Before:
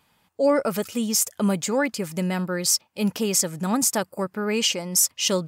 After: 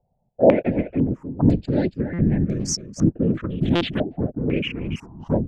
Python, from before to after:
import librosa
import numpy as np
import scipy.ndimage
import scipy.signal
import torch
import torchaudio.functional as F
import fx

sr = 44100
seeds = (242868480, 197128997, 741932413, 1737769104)

p1 = fx.wiener(x, sr, points=41)
p2 = fx.tilt_eq(p1, sr, slope=-3.0)
p3 = fx.backlash(p2, sr, play_db=-27.5)
p4 = p2 + F.gain(torch.from_numpy(p3), -3.5).numpy()
p5 = fx.whisperise(p4, sr, seeds[0])
p6 = fx.resample_bad(p5, sr, factor=4, down='none', up='hold', at=(3.37, 3.98))
p7 = fx.env_phaser(p6, sr, low_hz=310.0, high_hz=1200.0, full_db=-11.5)
p8 = p7 + fx.echo_single(p7, sr, ms=281, db=-11.5, dry=0)
p9 = fx.buffer_glitch(p8, sr, at_s=(2.13, 3.75), block=256, repeats=9)
p10 = fx.filter_held_lowpass(p9, sr, hz=2.0, low_hz=700.0, high_hz=6100.0)
y = F.gain(torch.from_numpy(p10), -4.5).numpy()